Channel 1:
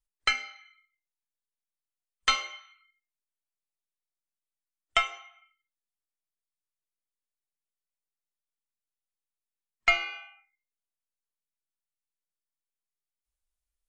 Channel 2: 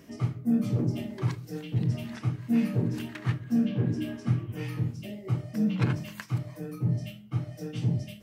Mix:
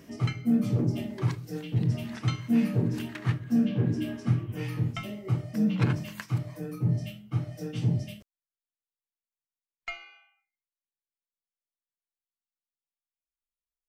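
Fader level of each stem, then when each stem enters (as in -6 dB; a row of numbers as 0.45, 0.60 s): -14.5, +1.0 dB; 0.00, 0.00 s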